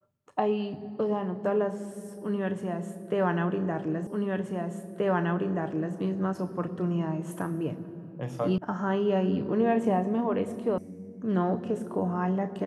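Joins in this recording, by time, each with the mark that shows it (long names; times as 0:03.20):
0:04.07: the same again, the last 1.88 s
0:08.58: cut off before it has died away
0:10.78: cut off before it has died away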